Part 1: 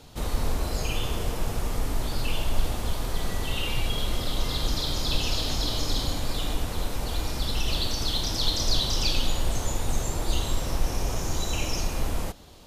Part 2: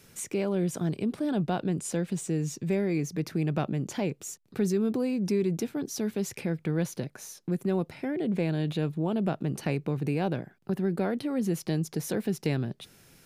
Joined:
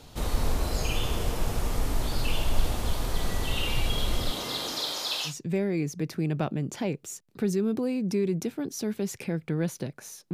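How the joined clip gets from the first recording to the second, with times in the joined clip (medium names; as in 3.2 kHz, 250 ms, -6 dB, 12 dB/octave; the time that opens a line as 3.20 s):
part 1
4.30–5.34 s: high-pass 150 Hz -> 1 kHz
5.29 s: go over to part 2 from 2.46 s, crossfade 0.10 s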